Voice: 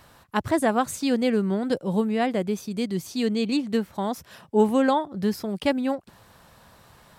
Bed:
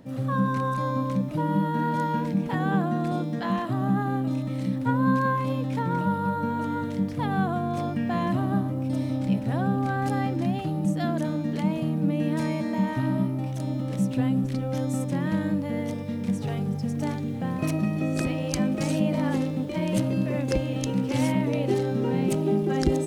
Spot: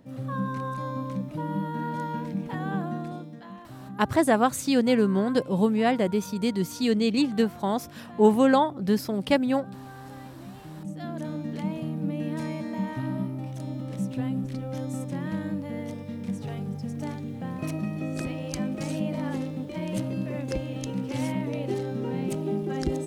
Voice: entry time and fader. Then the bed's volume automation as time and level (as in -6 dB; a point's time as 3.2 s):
3.65 s, +1.0 dB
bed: 2.94 s -5.5 dB
3.52 s -17 dB
10.5 s -17 dB
11.33 s -5 dB